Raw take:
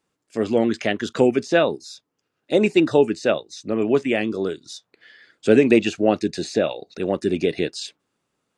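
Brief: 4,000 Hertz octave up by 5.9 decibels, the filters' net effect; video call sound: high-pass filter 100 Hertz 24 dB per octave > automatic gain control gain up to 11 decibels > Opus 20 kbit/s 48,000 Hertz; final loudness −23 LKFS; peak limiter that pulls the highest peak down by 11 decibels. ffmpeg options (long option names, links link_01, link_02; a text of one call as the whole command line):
ffmpeg -i in.wav -af "equalizer=frequency=4000:width_type=o:gain=7.5,alimiter=limit=-13dB:level=0:latency=1,highpass=frequency=100:width=0.5412,highpass=frequency=100:width=1.3066,dynaudnorm=maxgain=11dB,volume=3dB" -ar 48000 -c:a libopus -b:a 20k out.opus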